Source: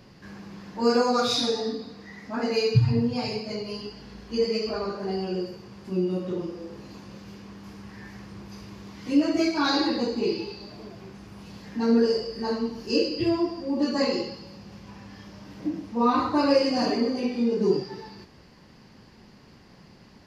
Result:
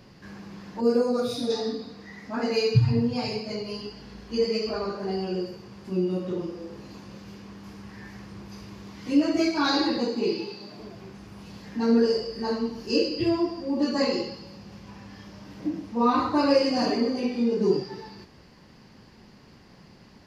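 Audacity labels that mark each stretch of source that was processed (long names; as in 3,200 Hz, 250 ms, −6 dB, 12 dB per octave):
0.810000	1.500000	gain on a spectral selection 710–8,300 Hz −11 dB
9.970000	10.800000	high-pass filter 130 Hz 24 dB per octave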